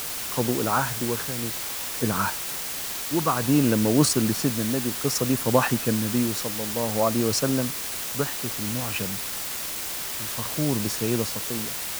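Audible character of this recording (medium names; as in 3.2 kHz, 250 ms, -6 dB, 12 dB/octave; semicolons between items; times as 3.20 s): tremolo triangle 0.57 Hz, depth 70%; a quantiser's noise floor 6-bit, dither triangular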